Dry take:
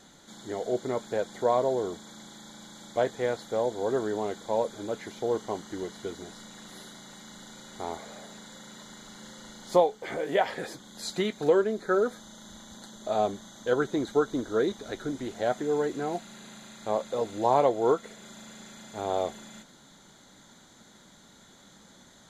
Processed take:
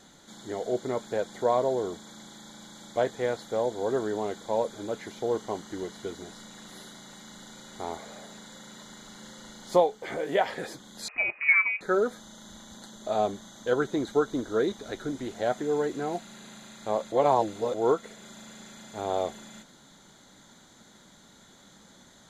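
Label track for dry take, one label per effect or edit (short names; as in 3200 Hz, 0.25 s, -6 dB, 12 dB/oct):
11.080000	11.810000	inverted band carrier 2700 Hz
17.120000	17.740000	reverse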